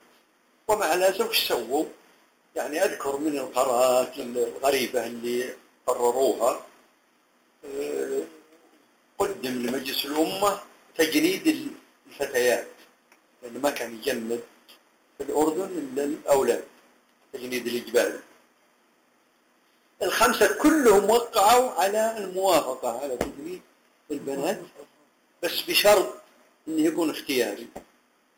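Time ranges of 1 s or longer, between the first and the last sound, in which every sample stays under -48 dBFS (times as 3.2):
18.4–20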